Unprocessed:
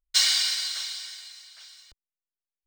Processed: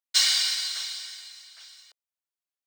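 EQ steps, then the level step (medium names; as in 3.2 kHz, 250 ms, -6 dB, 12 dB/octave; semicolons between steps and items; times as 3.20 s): high-pass 510 Hz 24 dB/octave; 0.0 dB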